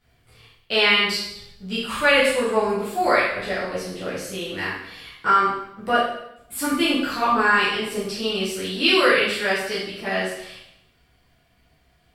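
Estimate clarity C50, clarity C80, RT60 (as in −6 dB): 1.5 dB, 4.5 dB, 0.80 s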